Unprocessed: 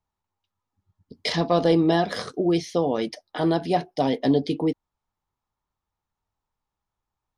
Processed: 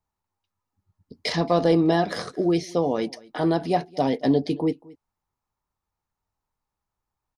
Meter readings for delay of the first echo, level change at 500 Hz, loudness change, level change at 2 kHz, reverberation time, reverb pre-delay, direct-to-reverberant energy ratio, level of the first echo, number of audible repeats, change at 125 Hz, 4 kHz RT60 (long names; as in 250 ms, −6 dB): 225 ms, 0.0 dB, 0.0 dB, −0.5 dB, no reverb audible, no reverb audible, no reverb audible, −23.0 dB, 1, 0.0 dB, no reverb audible